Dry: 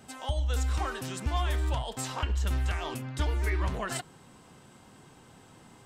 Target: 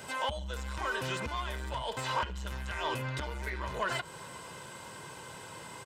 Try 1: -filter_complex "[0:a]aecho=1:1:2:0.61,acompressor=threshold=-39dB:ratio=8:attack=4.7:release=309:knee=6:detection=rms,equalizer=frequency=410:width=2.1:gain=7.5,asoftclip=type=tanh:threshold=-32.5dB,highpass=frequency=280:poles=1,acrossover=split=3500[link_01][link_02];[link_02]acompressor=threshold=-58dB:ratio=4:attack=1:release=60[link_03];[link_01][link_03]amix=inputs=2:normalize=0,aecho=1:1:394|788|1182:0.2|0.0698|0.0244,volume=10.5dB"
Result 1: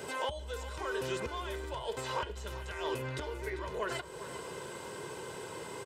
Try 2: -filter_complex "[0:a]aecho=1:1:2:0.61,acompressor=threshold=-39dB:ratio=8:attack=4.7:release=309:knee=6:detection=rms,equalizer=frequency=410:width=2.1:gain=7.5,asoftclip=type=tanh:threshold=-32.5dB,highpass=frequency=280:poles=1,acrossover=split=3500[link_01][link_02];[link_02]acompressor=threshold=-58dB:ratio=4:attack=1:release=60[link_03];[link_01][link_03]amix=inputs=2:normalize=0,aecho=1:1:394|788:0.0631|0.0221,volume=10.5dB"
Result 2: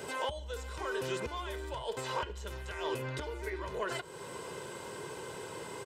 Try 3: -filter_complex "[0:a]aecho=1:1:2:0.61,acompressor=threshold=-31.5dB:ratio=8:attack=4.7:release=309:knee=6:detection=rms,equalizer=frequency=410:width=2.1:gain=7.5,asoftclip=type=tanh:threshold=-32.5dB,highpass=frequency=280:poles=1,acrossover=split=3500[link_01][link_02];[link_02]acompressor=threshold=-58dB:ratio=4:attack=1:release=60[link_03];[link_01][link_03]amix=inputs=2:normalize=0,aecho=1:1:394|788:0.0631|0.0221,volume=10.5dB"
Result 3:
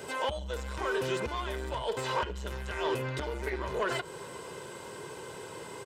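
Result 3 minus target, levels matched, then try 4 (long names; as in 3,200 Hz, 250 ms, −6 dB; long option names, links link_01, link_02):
500 Hz band +5.0 dB
-filter_complex "[0:a]aecho=1:1:2:0.61,acompressor=threshold=-31.5dB:ratio=8:attack=4.7:release=309:knee=6:detection=rms,equalizer=frequency=410:width=2.1:gain=-4.5,asoftclip=type=tanh:threshold=-32.5dB,highpass=frequency=280:poles=1,acrossover=split=3500[link_01][link_02];[link_02]acompressor=threshold=-58dB:ratio=4:attack=1:release=60[link_03];[link_01][link_03]amix=inputs=2:normalize=0,aecho=1:1:394|788:0.0631|0.0221,volume=10.5dB"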